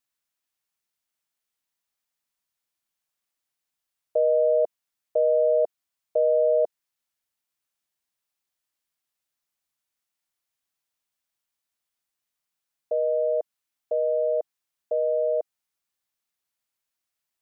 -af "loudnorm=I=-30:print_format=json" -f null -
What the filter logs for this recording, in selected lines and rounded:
"input_i" : "-24.7",
"input_tp" : "-14.2",
"input_lra" : "6.4",
"input_thresh" : "-34.9",